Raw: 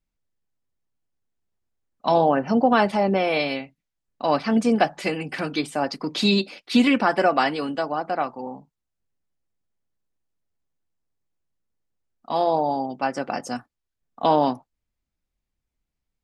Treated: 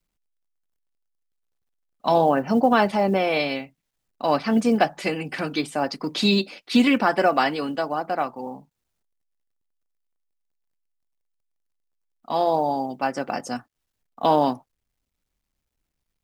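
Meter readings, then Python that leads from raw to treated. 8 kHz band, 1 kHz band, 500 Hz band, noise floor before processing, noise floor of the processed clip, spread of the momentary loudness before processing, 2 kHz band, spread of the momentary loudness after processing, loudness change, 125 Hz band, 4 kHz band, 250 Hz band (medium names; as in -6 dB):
0.0 dB, 0.0 dB, 0.0 dB, -83 dBFS, -80 dBFS, 11 LU, 0.0 dB, 11 LU, 0.0 dB, 0.0 dB, 0.0 dB, 0.0 dB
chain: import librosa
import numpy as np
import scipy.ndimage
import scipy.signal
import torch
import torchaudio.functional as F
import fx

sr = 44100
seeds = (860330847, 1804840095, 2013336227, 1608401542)

y = fx.quant_companded(x, sr, bits=8)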